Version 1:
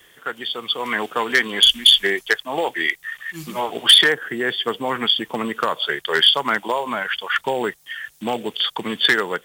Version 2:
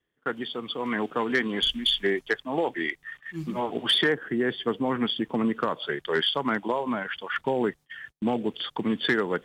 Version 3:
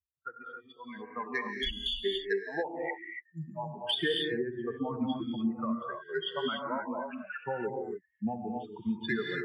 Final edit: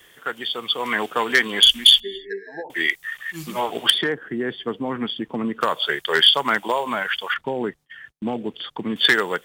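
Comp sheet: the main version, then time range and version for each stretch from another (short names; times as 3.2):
1
2–2.7 from 3
3.9–5.61 from 2
7.34–8.96 from 2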